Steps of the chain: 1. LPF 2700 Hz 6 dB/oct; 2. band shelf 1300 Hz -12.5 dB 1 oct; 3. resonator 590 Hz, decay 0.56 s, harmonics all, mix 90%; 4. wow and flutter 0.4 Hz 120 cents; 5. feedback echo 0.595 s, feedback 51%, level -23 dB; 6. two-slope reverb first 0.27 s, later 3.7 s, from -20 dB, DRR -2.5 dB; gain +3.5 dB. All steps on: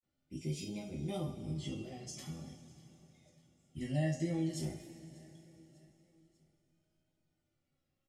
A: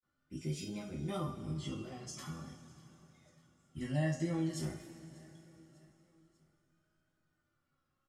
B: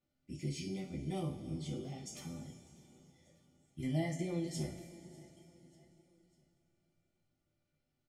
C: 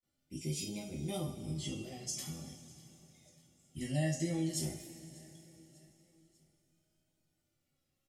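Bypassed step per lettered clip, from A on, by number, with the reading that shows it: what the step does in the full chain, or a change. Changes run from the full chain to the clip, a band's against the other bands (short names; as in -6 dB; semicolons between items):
2, 1 kHz band +3.5 dB; 4, 1 kHz band +1.5 dB; 1, 8 kHz band +8.5 dB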